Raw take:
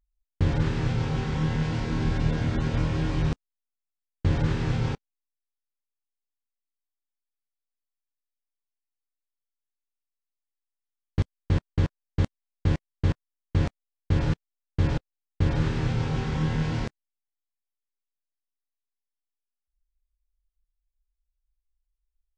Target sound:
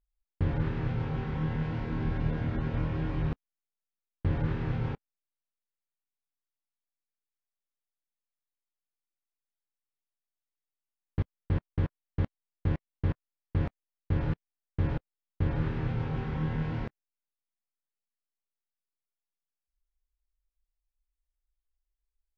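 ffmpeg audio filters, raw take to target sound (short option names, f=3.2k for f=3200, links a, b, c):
-af "lowpass=2.4k,volume=-5dB"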